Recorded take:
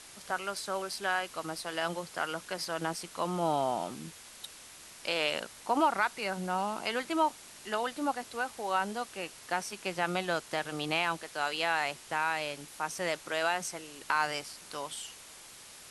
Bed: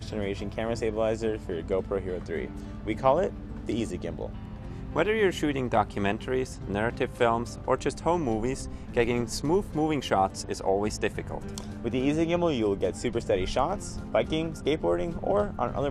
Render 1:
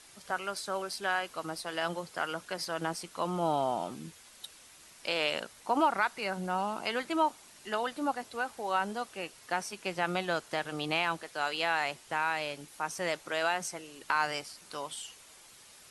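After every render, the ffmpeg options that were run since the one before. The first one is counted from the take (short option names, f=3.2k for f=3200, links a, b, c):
-af "afftdn=nr=6:nf=-51"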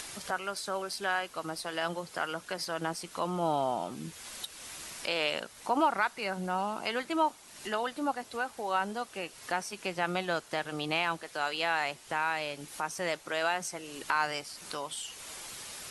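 -af "acompressor=mode=upward:threshold=-32dB:ratio=2.5"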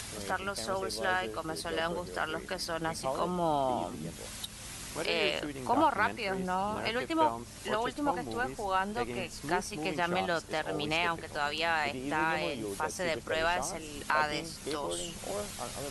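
-filter_complex "[1:a]volume=-12dB[a];[0:a][a]amix=inputs=2:normalize=0"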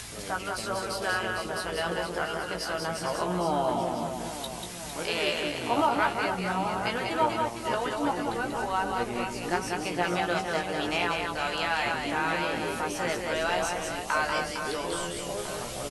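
-filter_complex "[0:a]asplit=2[a][b];[b]adelay=17,volume=-5.5dB[c];[a][c]amix=inputs=2:normalize=0,aecho=1:1:190|456|828.4|1350|2080:0.631|0.398|0.251|0.158|0.1"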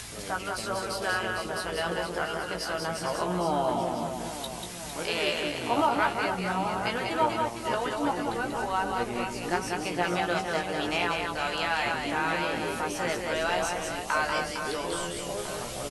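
-af anull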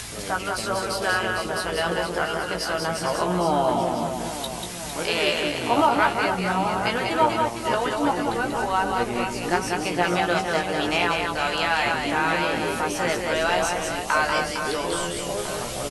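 -af "volume=5.5dB"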